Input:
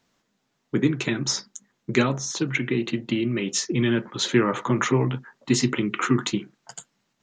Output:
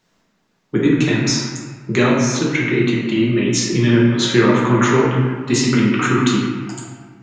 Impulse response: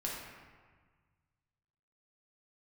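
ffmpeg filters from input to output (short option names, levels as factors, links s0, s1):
-filter_complex "[1:a]atrim=start_sample=2205[s0];[0:a][s0]afir=irnorm=-1:irlink=0,volume=1.88"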